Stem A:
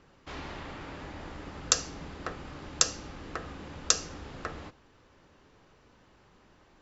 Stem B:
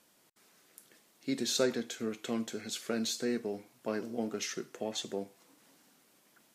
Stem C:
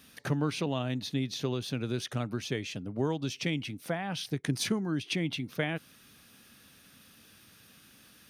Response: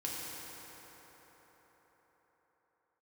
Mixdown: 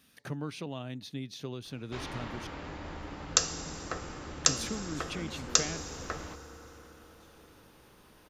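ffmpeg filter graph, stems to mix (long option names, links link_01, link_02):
-filter_complex "[0:a]adelay=1650,volume=-2dB,asplit=2[link_01][link_02];[link_02]volume=-9dB[link_03];[1:a]adelay=2250,volume=-14.5dB,asplit=2[link_04][link_05];[link_05]volume=-16dB[link_06];[2:a]volume=-7.5dB,asplit=3[link_07][link_08][link_09];[link_07]atrim=end=2.47,asetpts=PTS-STARTPTS,afade=type=out:start_time=2.466:duration=0.004:curve=hsin[link_10];[link_08]atrim=start=2.47:end=4.44,asetpts=PTS-STARTPTS,volume=0[link_11];[link_09]atrim=start=4.44,asetpts=PTS-STARTPTS,afade=type=in:duration=0.004:curve=hsin[link_12];[link_10][link_11][link_12]concat=n=3:v=0:a=1,asplit=2[link_13][link_14];[link_14]apad=whole_len=388078[link_15];[link_04][link_15]sidechaingate=range=-33dB:threshold=-57dB:ratio=16:detection=peak[link_16];[3:a]atrim=start_sample=2205[link_17];[link_03][link_06]amix=inputs=2:normalize=0[link_18];[link_18][link_17]afir=irnorm=-1:irlink=0[link_19];[link_01][link_16][link_13][link_19]amix=inputs=4:normalize=0"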